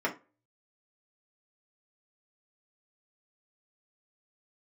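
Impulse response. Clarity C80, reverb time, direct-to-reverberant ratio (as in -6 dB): 21.5 dB, 0.30 s, -2.5 dB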